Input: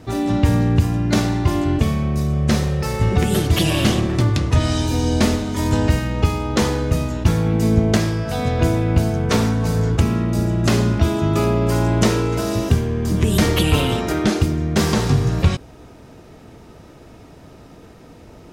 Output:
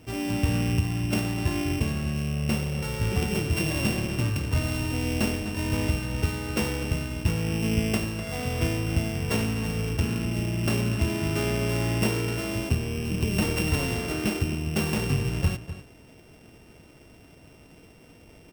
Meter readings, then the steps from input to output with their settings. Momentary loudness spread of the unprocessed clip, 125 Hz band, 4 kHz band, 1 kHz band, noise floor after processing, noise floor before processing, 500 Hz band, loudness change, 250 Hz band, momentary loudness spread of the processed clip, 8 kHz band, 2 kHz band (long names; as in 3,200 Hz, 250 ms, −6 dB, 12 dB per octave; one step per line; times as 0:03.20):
4 LU, −9.0 dB, −7.0 dB, −11.0 dB, −52 dBFS, −43 dBFS, −9.5 dB, −8.5 dB, −9.0 dB, 3 LU, −6.0 dB, −4.0 dB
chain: samples sorted by size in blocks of 16 samples
slap from a distant wall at 43 metres, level −12 dB
level −9 dB